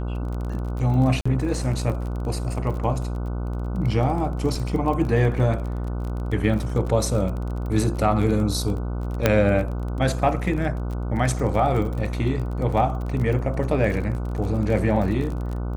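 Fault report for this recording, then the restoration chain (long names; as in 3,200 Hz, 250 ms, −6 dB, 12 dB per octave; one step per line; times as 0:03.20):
mains buzz 60 Hz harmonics 25 −27 dBFS
surface crackle 31 per second −30 dBFS
0:01.21–0:01.25: drop-out 45 ms
0:04.55: drop-out 3 ms
0:09.26: click −3 dBFS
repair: click removal
hum removal 60 Hz, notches 25
repair the gap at 0:01.21, 45 ms
repair the gap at 0:04.55, 3 ms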